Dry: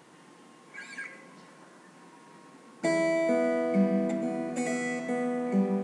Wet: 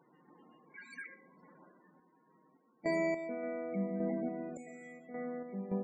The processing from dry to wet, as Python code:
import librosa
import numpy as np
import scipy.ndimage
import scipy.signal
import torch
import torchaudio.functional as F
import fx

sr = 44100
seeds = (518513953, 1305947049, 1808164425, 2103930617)

y = fx.high_shelf(x, sr, hz=9800.0, db=2.5)
y = y + 10.0 ** (-17.0 / 20.0) * np.pad(y, (int(116 * sr / 1000.0), 0))[:len(y)]
y = fx.spec_topn(y, sr, count=32)
y = fx.tremolo_random(y, sr, seeds[0], hz=3.5, depth_pct=80)
y = F.gain(torch.from_numpy(y), -5.5).numpy()